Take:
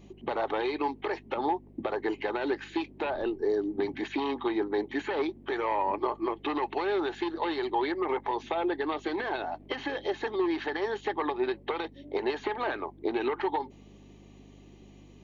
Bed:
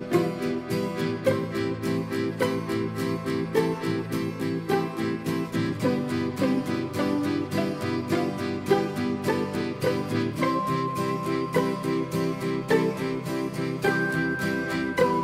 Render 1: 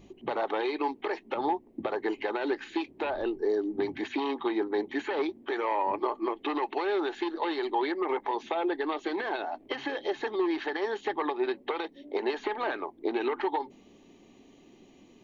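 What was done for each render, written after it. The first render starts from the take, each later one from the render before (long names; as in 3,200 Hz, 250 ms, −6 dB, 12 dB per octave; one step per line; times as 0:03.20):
hum removal 50 Hz, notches 5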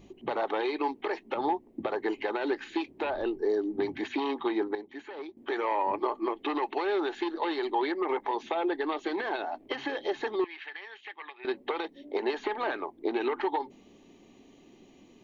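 0:04.75–0:05.37: clip gain −11 dB
0:10.44–0:11.45: resonant band-pass 2,400 Hz, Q 2.5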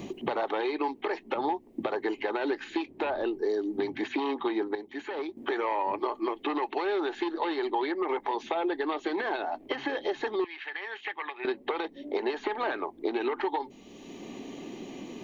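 multiband upward and downward compressor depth 70%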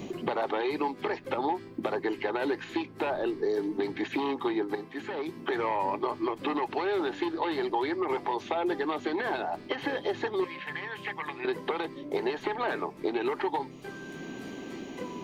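mix in bed −19 dB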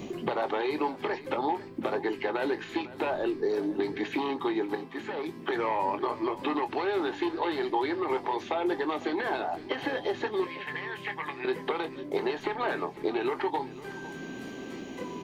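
double-tracking delay 23 ms −11 dB
single-tap delay 504 ms −16.5 dB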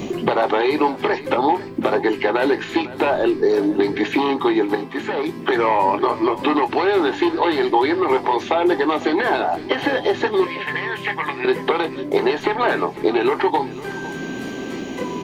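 level +11.5 dB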